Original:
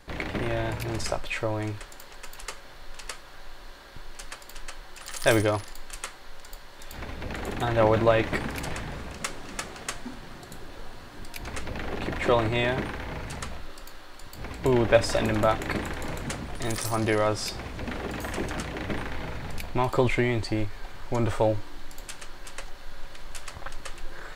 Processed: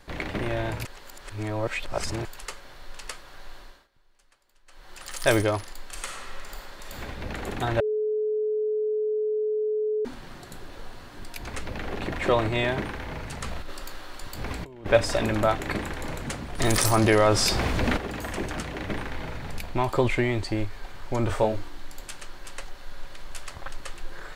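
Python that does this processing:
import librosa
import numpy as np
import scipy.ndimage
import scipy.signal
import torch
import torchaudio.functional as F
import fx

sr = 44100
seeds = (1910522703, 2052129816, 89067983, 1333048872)

y = fx.reverb_throw(x, sr, start_s=5.85, length_s=1.15, rt60_s=2.5, drr_db=-1.5)
y = fx.over_compress(y, sr, threshold_db=-35.0, ratio=-1.0, at=(13.41, 14.86))
y = fx.env_flatten(y, sr, amount_pct=50, at=(16.58, 17.96), fade=0.02)
y = fx.doubler(y, sr, ms=23.0, db=-4.5, at=(21.27, 21.68))
y = fx.edit(y, sr, fx.reverse_span(start_s=0.85, length_s=1.4),
    fx.fade_down_up(start_s=3.58, length_s=1.38, db=-23.5, fade_s=0.3),
    fx.bleep(start_s=7.8, length_s=2.25, hz=428.0, db=-23.0), tone=tone)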